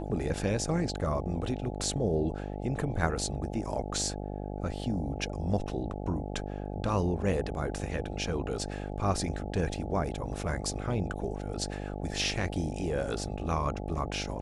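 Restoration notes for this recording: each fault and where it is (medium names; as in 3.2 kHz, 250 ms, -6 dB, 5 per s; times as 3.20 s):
buzz 50 Hz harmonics 17 -37 dBFS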